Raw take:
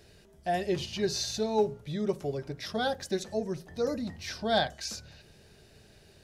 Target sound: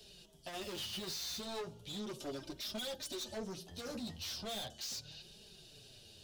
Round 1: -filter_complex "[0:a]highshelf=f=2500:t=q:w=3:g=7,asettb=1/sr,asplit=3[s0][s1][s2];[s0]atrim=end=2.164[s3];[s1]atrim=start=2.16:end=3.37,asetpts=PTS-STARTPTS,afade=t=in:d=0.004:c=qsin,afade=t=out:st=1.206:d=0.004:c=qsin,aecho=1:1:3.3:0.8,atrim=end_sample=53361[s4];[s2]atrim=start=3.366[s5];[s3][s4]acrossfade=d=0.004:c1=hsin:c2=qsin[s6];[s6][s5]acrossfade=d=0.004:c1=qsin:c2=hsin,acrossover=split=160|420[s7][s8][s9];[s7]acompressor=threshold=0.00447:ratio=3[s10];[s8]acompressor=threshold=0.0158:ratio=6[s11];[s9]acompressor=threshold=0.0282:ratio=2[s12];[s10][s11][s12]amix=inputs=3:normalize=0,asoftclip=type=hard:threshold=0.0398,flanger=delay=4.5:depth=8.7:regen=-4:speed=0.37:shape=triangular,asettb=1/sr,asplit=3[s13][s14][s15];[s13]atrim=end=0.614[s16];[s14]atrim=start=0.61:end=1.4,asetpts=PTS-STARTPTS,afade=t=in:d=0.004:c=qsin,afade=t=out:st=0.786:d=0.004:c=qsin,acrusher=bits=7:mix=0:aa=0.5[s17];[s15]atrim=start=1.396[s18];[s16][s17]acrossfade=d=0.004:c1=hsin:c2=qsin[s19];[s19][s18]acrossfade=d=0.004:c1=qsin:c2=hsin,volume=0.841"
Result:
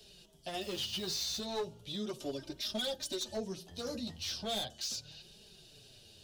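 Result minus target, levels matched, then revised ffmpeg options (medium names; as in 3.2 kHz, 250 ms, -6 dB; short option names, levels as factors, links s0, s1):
hard clipper: distortion -6 dB
-filter_complex "[0:a]highshelf=f=2500:t=q:w=3:g=7,asettb=1/sr,asplit=3[s0][s1][s2];[s0]atrim=end=2.164[s3];[s1]atrim=start=2.16:end=3.37,asetpts=PTS-STARTPTS,afade=t=in:d=0.004:c=qsin,afade=t=out:st=1.206:d=0.004:c=qsin,aecho=1:1:3.3:0.8,atrim=end_sample=53361[s4];[s2]atrim=start=3.366[s5];[s3][s4]acrossfade=d=0.004:c1=hsin:c2=qsin[s6];[s6][s5]acrossfade=d=0.004:c1=qsin:c2=hsin,acrossover=split=160|420[s7][s8][s9];[s7]acompressor=threshold=0.00447:ratio=3[s10];[s8]acompressor=threshold=0.0158:ratio=6[s11];[s9]acompressor=threshold=0.0282:ratio=2[s12];[s10][s11][s12]amix=inputs=3:normalize=0,asoftclip=type=hard:threshold=0.0168,flanger=delay=4.5:depth=8.7:regen=-4:speed=0.37:shape=triangular,asettb=1/sr,asplit=3[s13][s14][s15];[s13]atrim=end=0.614[s16];[s14]atrim=start=0.61:end=1.4,asetpts=PTS-STARTPTS,afade=t=in:d=0.004:c=qsin,afade=t=out:st=0.786:d=0.004:c=qsin,acrusher=bits=7:mix=0:aa=0.5[s17];[s15]atrim=start=1.396[s18];[s16][s17]acrossfade=d=0.004:c1=hsin:c2=qsin[s19];[s19][s18]acrossfade=d=0.004:c1=qsin:c2=hsin,volume=0.841"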